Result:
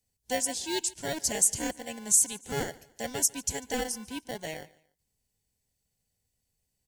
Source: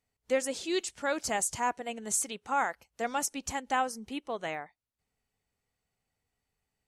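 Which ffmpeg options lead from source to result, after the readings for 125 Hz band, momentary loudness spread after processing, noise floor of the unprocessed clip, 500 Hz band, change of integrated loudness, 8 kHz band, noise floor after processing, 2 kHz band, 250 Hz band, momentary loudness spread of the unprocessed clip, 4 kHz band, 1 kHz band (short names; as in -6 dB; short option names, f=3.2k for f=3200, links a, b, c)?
+8.5 dB, 16 LU, under -85 dBFS, -2.0 dB, +4.0 dB, +8.0 dB, -81 dBFS, -3.0 dB, +0.5 dB, 8 LU, +4.0 dB, -7.5 dB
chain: -filter_complex "[0:a]bass=f=250:g=7,treble=f=4k:g=12,acrossover=split=160|1800[a][b][c];[b]acrusher=samples=35:mix=1:aa=0.000001[d];[a][d][c]amix=inputs=3:normalize=0,aecho=1:1:145|290:0.0794|0.0254,volume=-3dB"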